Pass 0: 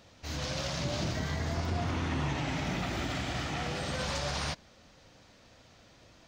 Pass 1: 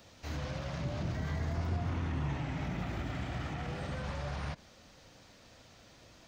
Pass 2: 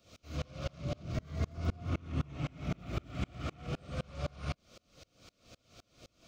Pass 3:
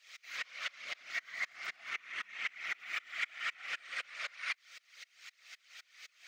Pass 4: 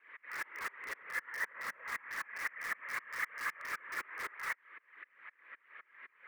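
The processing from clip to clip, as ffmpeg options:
-filter_complex "[0:a]acrossover=split=2600[a][b];[b]acompressor=threshold=-53dB:ratio=4:attack=1:release=60[c];[a][c]amix=inputs=2:normalize=0,highshelf=f=8.9k:g=6.5,acrossover=split=180[d][e];[e]alimiter=level_in=10.5dB:limit=-24dB:level=0:latency=1:release=53,volume=-10.5dB[f];[d][f]amix=inputs=2:normalize=0"
-af "superequalizer=9b=0.316:11b=0.355,aeval=exprs='val(0)*pow(10,-32*if(lt(mod(-3.9*n/s,1),2*abs(-3.9)/1000),1-mod(-3.9*n/s,1)/(2*abs(-3.9)/1000),(mod(-3.9*n/s,1)-2*abs(-3.9)/1000)/(1-2*abs(-3.9)/1000))/20)':c=same,volume=7dB"
-af "afftfilt=real='hypot(re,im)*cos(2*PI*random(0))':imag='hypot(re,im)*sin(2*PI*random(1))':win_size=512:overlap=0.75,highpass=f=1.9k:t=q:w=6.5,volume=9.5dB"
-filter_complex "[0:a]highpass=f=360:t=q:w=0.5412,highpass=f=360:t=q:w=1.307,lowpass=f=2.2k:t=q:w=0.5176,lowpass=f=2.2k:t=q:w=0.7071,lowpass=f=2.2k:t=q:w=1.932,afreqshift=-170,asplit=2[a][b];[b]aeval=exprs='(mod(106*val(0)+1,2)-1)/106':c=same,volume=-7dB[c];[a][c]amix=inputs=2:normalize=0,volume=2dB"

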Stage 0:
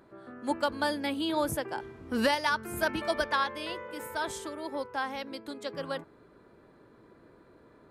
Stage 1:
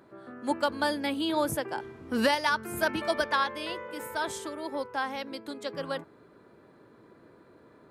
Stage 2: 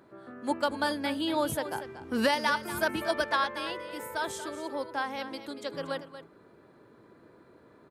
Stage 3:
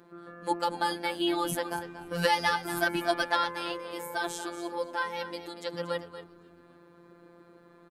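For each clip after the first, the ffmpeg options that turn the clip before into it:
-af "highpass=86,volume=1.5dB"
-af "aecho=1:1:235:0.251,volume=-1dB"
-filter_complex "[0:a]afftfilt=real='hypot(re,im)*cos(PI*b)':imag='0':win_size=1024:overlap=0.75,asplit=4[a][b][c][d];[b]adelay=264,afreqshift=-87,volume=-24dB[e];[c]adelay=528,afreqshift=-174,volume=-30dB[f];[d]adelay=792,afreqshift=-261,volume=-36dB[g];[a][e][f][g]amix=inputs=4:normalize=0,volume=4.5dB"

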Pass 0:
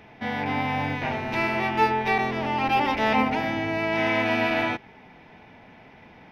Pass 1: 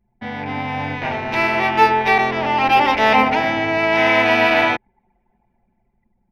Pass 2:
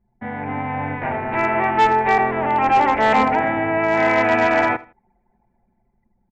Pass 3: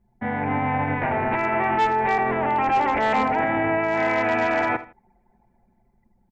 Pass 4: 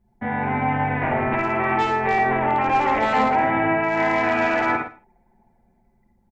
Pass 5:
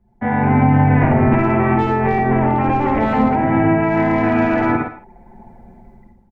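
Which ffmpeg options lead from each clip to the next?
-filter_complex "[0:a]anlmdn=3.98,lowshelf=f=150:g=4,acrossover=split=380[a][b];[b]dynaudnorm=f=240:g=9:m=12dB[c];[a][c]amix=inputs=2:normalize=0"
-af "lowpass=f=2k:w=0.5412,lowpass=f=2k:w=1.3066,aresample=16000,volume=9.5dB,asoftclip=hard,volume=-9.5dB,aresample=44100,aecho=1:1:80|160:0.1|0.029"
-af "alimiter=limit=-17dB:level=0:latency=1:release=24,volume=2.5dB"
-af "aecho=1:1:54|67|115:0.501|0.473|0.266"
-filter_complex "[0:a]dynaudnorm=f=110:g=7:m=14dB,highshelf=f=2.8k:g=-12,acrossover=split=300[a][b];[b]acompressor=threshold=-23dB:ratio=10[c];[a][c]amix=inputs=2:normalize=0,volume=5.5dB"

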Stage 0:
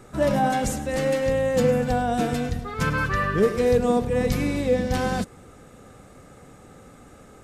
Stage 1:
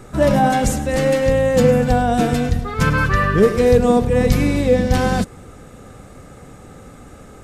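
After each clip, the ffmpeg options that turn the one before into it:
-af "lowshelf=f=120:g=5.5,volume=6dB"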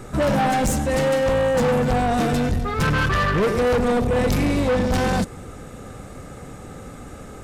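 -af "asoftclip=type=tanh:threshold=-19dB,volume=2.5dB"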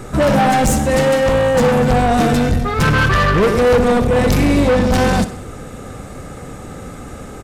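-af "aecho=1:1:63|126|189|252|315:0.2|0.0998|0.0499|0.0249|0.0125,volume=6dB"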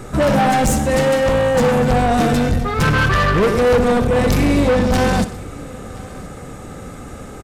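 -af "aecho=1:1:1019:0.0708,volume=-1.5dB"

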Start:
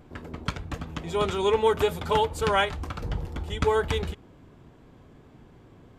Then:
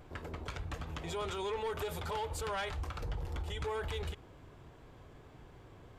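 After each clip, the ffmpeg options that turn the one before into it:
-af "equalizer=f=220:w=1.2:g=-9.5,asoftclip=type=tanh:threshold=-20dB,alimiter=level_in=7dB:limit=-24dB:level=0:latency=1:release=76,volume=-7dB"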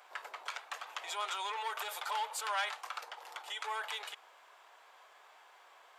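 -af "highpass=f=750:w=0.5412,highpass=f=750:w=1.3066,volume=4.5dB"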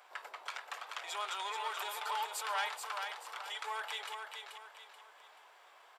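-af "bandreject=f=6.5k:w=20,aecho=1:1:432|864|1296|1728:0.531|0.196|0.0727|0.0269,volume=-1.5dB"

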